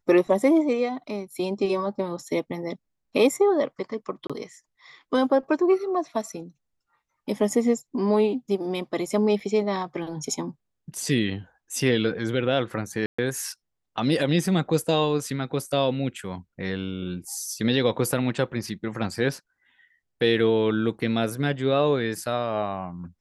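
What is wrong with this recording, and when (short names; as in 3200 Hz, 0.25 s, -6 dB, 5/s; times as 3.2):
4.27–4.3 gap 26 ms
9.4 gap 4 ms
13.06–13.19 gap 0.125 s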